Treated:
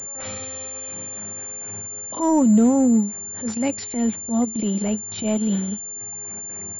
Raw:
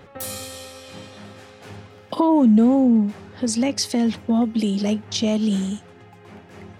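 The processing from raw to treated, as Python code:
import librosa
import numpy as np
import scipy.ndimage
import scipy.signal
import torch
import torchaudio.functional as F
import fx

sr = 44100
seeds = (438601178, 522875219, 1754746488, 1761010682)

y = fx.transient(x, sr, attack_db=-11, sustain_db=-7)
y = fx.pwm(y, sr, carrier_hz=7200.0)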